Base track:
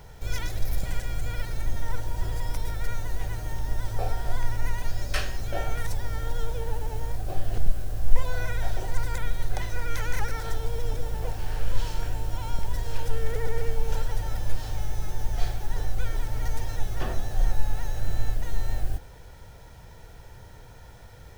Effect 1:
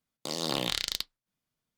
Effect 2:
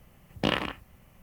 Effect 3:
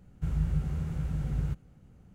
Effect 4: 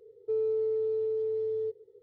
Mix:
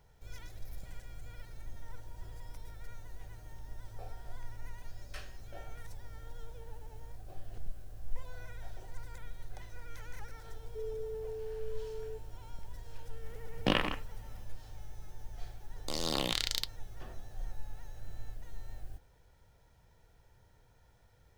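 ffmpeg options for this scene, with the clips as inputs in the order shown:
-filter_complex "[0:a]volume=0.133[s0];[4:a]atrim=end=2.02,asetpts=PTS-STARTPTS,volume=0.251,afade=t=in:d=0.004:c=hsin,afade=t=out:st=2.016:d=0.004:c=hsin,adelay=10470[s1];[2:a]atrim=end=1.22,asetpts=PTS-STARTPTS,volume=0.75,afade=t=in:d=0.004:c=hsin,afade=t=out:st=1.216:d=0.004:c=hsin,adelay=13230[s2];[1:a]atrim=end=1.77,asetpts=PTS-STARTPTS,volume=0.75,afade=t=in:d=0.004:c=hsin,afade=t=out:st=1.766:d=0.004:c=hsin,adelay=15630[s3];[s0][s1][s2][s3]amix=inputs=4:normalize=0"

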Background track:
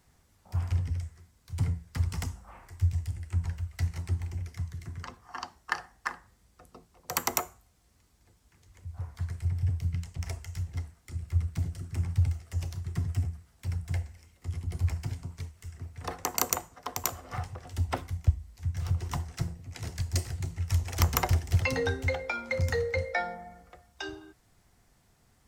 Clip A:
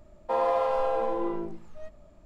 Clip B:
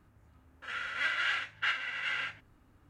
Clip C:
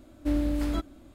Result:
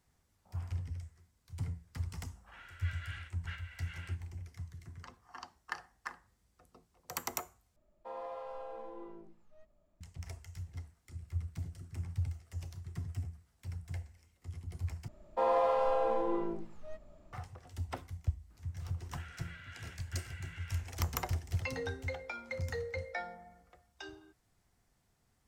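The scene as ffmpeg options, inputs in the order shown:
-filter_complex "[2:a]asplit=2[s0][s1];[1:a]asplit=2[s2][s3];[0:a]volume=0.335[s4];[s2]bandreject=f=60:t=h:w=6,bandreject=f=120:t=h:w=6,bandreject=f=180:t=h:w=6,bandreject=f=240:t=h:w=6,bandreject=f=300:t=h:w=6,bandreject=f=360:t=h:w=6,bandreject=f=420:t=h:w=6,bandreject=f=480:t=h:w=6,bandreject=f=540:t=h:w=6[s5];[s1]acompressor=threshold=0.00447:ratio=6:attack=3.2:release=140:knee=1:detection=peak[s6];[s4]asplit=3[s7][s8][s9];[s7]atrim=end=7.764[s10];[s5]atrim=end=2.25,asetpts=PTS-STARTPTS,volume=0.126[s11];[s8]atrim=start=10.006:end=15.084[s12];[s3]atrim=end=2.25,asetpts=PTS-STARTPTS,volume=0.668[s13];[s9]atrim=start=17.326[s14];[s0]atrim=end=2.89,asetpts=PTS-STARTPTS,volume=0.141,afade=t=in:d=0.004:c=hsin,afade=t=out:st=2.886:d=0.004:c=hsin,adelay=1840[s15];[s6]atrim=end=2.89,asetpts=PTS-STARTPTS,volume=0.668,afade=t=in:d=0.004:c=hsin,afade=t=out:st=2.886:d=0.004:c=hsin,adelay=18500[s16];[s10][s11]acrossfade=d=0.004:c1=hsin:c2=hsin[s17];[s17][s12]acrossfade=d=0.004:c1=hsin:c2=hsin[s18];[s18][s13]acrossfade=d=0.004:c1=hsin:c2=hsin[s19];[s19][s14]acrossfade=d=0.004:c1=hsin:c2=hsin[s20];[s20][s15][s16]amix=inputs=3:normalize=0"

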